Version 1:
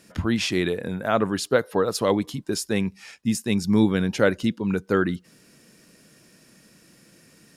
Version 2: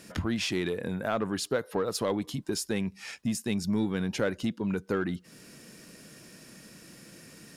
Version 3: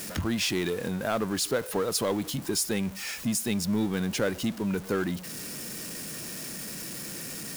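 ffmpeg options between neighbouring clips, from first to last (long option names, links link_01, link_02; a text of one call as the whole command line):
ffmpeg -i in.wav -filter_complex "[0:a]asplit=2[link_01][link_02];[link_02]asoftclip=type=tanh:threshold=-22.5dB,volume=-5dB[link_03];[link_01][link_03]amix=inputs=2:normalize=0,acompressor=threshold=-34dB:ratio=2" out.wav
ffmpeg -i in.wav -af "aeval=exprs='val(0)+0.5*0.0126*sgn(val(0))':channel_layout=same,crystalizer=i=1:c=0" out.wav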